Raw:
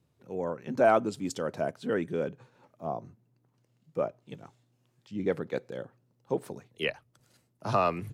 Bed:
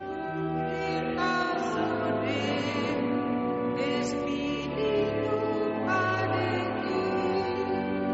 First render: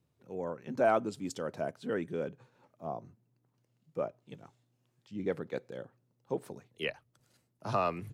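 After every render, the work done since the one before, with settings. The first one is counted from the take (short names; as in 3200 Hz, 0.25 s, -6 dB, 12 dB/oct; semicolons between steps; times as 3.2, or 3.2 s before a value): gain -4.5 dB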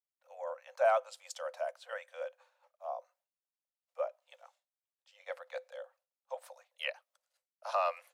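expander -60 dBFS; Chebyshev high-pass 510 Hz, order 10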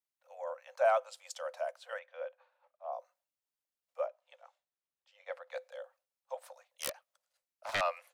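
1.99–2.93 air absorption 240 m; 4.06–5.51 LPF 3100 Hz 6 dB/oct; 6.5–7.81 self-modulated delay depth 0.41 ms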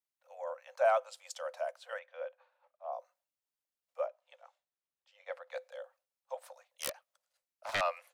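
nothing audible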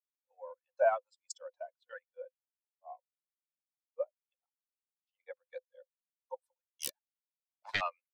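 per-bin expansion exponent 2; transient shaper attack +4 dB, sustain -11 dB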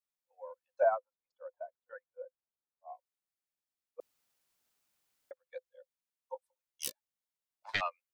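0.83–2.89 LPF 1500 Hz 24 dB/oct; 4–5.31 room tone; 6.33–7.74 doubler 19 ms -11 dB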